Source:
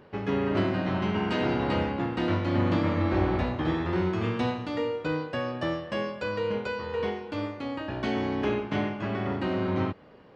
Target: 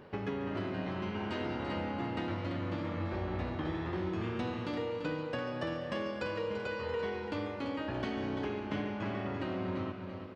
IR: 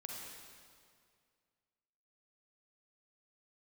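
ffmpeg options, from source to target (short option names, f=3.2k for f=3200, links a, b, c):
-filter_complex "[0:a]acompressor=threshold=-34dB:ratio=6,aecho=1:1:339|678|1017|1356|1695:0.376|0.173|0.0795|0.0366|0.0168,asplit=2[a][b];[1:a]atrim=start_sample=2205,adelay=141[c];[b][c]afir=irnorm=-1:irlink=0,volume=-8dB[d];[a][d]amix=inputs=2:normalize=0"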